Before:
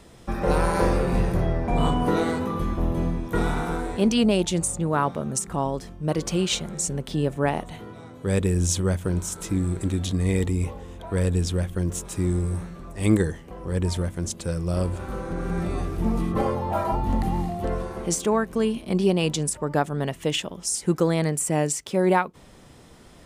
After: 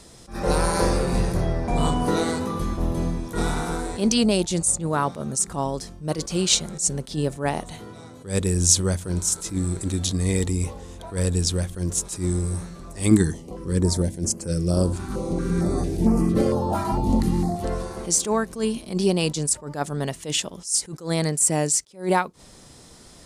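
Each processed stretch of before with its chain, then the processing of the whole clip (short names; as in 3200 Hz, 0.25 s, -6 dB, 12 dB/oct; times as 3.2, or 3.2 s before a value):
13.11–17.56 bell 280 Hz +7 dB 2.4 oct + stepped notch 4.4 Hz 530–3700 Hz
whole clip: band shelf 6600 Hz +9.5 dB; attack slew limiter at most 180 dB/s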